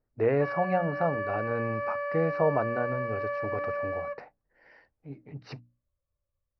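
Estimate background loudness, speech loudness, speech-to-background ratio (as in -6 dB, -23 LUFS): -33.0 LUFS, -30.5 LUFS, 2.5 dB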